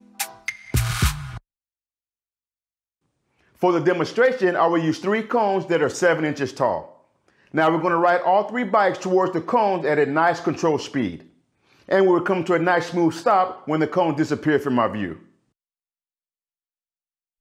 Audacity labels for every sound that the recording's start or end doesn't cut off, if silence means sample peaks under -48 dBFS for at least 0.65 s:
3.410000	15.290000	sound